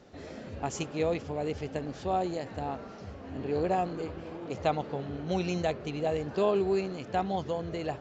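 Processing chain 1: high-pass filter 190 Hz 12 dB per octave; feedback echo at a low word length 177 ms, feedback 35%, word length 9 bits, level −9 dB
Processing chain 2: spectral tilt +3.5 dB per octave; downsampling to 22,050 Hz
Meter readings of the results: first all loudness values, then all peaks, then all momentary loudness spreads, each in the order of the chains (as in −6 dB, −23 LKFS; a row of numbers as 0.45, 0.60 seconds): −32.0, −34.5 LKFS; −14.0, −13.0 dBFS; 11, 12 LU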